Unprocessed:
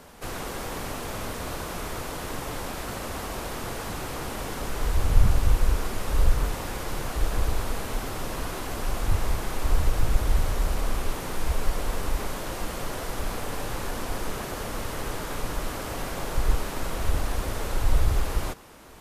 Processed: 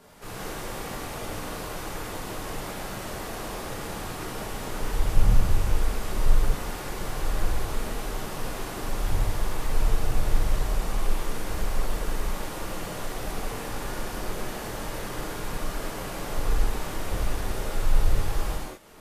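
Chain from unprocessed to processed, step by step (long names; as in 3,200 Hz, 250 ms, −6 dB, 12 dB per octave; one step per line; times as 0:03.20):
reverb reduction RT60 0.51 s
reverb whose tail is shaped and stops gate 270 ms flat, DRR −7.5 dB
level −8 dB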